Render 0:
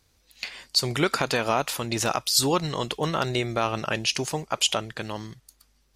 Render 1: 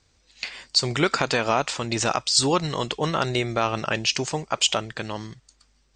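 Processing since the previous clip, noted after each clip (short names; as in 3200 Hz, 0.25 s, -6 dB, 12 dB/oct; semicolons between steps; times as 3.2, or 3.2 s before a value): Chebyshev low-pass 8600 Hz, order 8; gain +2.5 dB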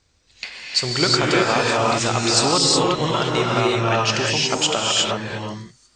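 non-linear reverb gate 0.39 s rising, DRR -3.5 dB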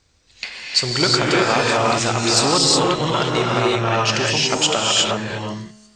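resonator 71 Hz, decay 1.3 s, harmonics all, mix 40%; core saturation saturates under 910 Hz; gain +6.5 dB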